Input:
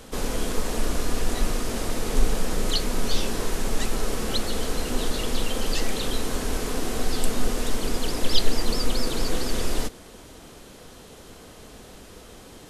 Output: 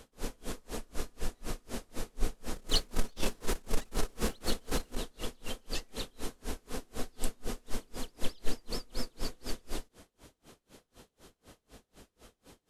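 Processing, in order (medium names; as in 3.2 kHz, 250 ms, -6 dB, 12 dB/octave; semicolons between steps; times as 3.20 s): 2.56–4.97 s: waveshaping leveller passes 2; logarithmic tremolo 4 Hz, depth 33 dB; trim -7 dB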